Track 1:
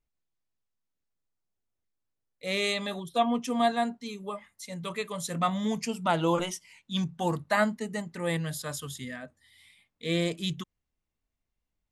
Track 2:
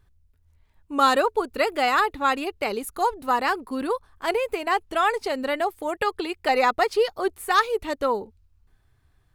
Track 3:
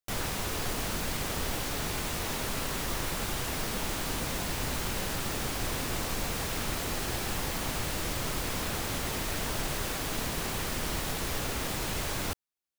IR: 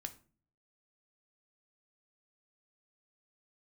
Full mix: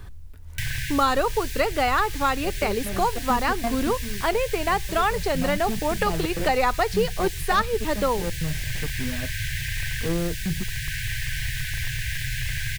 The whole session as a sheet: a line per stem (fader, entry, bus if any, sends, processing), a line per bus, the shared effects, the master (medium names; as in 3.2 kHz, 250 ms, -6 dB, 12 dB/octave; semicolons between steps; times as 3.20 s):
-1.0 dB, 0.00 s, no send, median filter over 41 samples; trance gate "x.xx.x.xx" 132 bpm -24 dB
-1.5 dB, 0.00 s, send -14 dB, none
-2.0 dB, 0.50 s, no send, FFT band-reject 150–1500 Hz; wavefolder -25.5 dBFS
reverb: on, RT60 0.40 s, pre-delay 3 ms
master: bass shelf 83 Hz +10 dB; three bands compressed up and down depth 70%